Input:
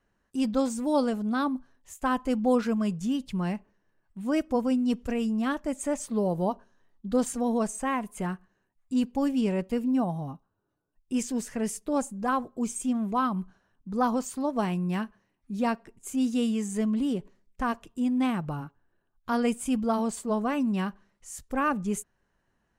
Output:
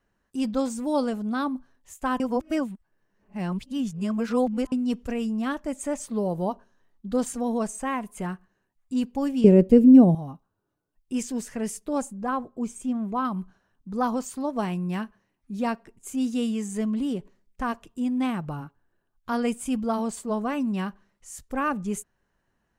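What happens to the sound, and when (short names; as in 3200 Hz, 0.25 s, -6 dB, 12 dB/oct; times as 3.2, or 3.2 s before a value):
2.2–4.72 reverse
9.44–10.15 resonant low shelf 650 Hz +12 dB, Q 1.5
12.13–13.25 high shelf 2500 Hz -8 dB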